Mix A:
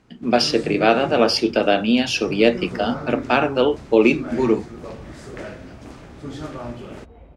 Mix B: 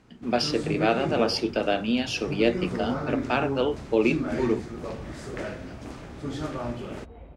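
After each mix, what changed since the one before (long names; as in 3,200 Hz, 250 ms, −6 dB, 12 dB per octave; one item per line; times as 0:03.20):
speech −7.5 dB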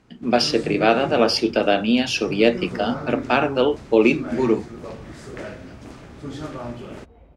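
speech +6.5 dB
second sound −4.5 dB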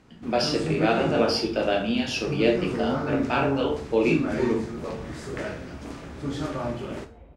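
speech −12.0 dB
reverb: on, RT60 0.40 s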